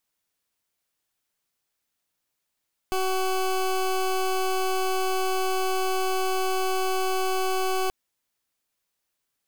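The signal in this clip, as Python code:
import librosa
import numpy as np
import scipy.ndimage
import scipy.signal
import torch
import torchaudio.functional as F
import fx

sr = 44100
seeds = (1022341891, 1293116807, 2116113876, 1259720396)

y = fx.pulse(sr, length_s=4.98, hz=376.0, level_db=-24.5, duty_pct=20)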